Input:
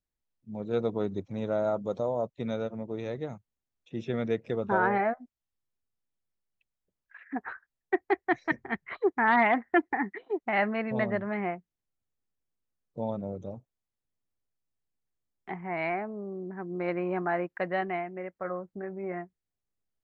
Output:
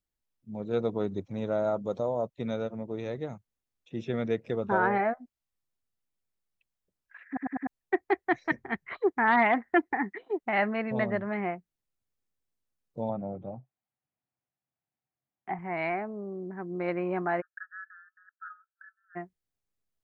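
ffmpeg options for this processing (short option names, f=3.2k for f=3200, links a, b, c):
-filter_complex "[0:a]asettb=1/sr,asplit=3[a][b][c];[a]atrim=end=13.094[d];[b]atrim=start=13.09:end=15.59,asetpts=PTS-STARTPTS,afade=t=in:d=0.004:c=qsin,afade=t=out:st=2.496:d=0.004:c=qsin,highpass=120,equalizer=f=130:t=q:w=4:g=7,equalizer=f=440:t=q:w=4:g=-6,equalizer=f=750:t=q:w=4:g=8,lowpass=f=2.7k:w=0.5412,lowpass=f=2.7k:w=1.3066[e];[c]atrim=start=15.586[f];[d][e]acrossfade=d=0.004:c1=hsin:c2=qsin[g];[g][f]acrossfade=d=0.004:c1=qsin:c2=hsin,asplit=3[h][i][j];[h]afade=t=out:st=17.4:d=0.02[k];[i]asuperpass=centerf=1500:order=20:qfactor=2.9,afade=t=in:st=17.4:d=0.02,afade=t=out:st=19.15:d=0.02[l];[j]afade=t=in:st=19.15:d=0.02[m];[k][l][m]amix=inputs=3:normalize=0,asplit=5[n][o][p][q][r];[n]atrim=end=7.372[s];[o]atrim=start=7.268:end=7.372[t];[p]atrim=start=7.268:end=7.372[u];[q]atrim=start=7.268:end=7.372[v];[r]atrim=start=7.668[w];[s][t]acrossfade=d=0.004:c1=hsin:c2=hsin[x];[x][u]acrossfade=d=0.004:c1=hsin:c2=hsin[y];[y][v]acrossfade=d=0.004:c1=hsin:c2=hsin[z];[z][w]acrossfade=d=0.004:c1=hsin:c2=hsin"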